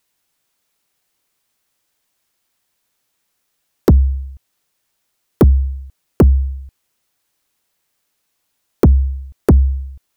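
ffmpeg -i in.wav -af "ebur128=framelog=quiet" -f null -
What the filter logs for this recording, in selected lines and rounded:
Integrated loudness:
  I:         -16.0 LUFS
  Threshold: -30.8 LUFS
Loudness range:
  LRA:         4.8 LU
  Threshold: -40.9 LUFS
  LRA low:   -22.7 LUFS
  LRA high:  -17.9 LUFS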